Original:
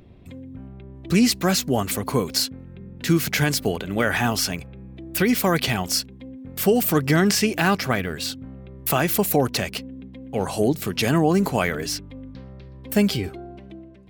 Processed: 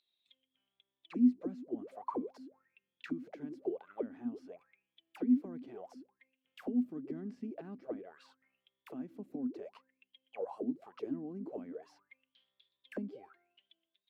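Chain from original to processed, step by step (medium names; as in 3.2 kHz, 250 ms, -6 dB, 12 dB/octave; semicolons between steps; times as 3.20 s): bass shelf 200 Hz -11 dB; auto-wah 250–4100 Hz, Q 18, down, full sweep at -19 dBFS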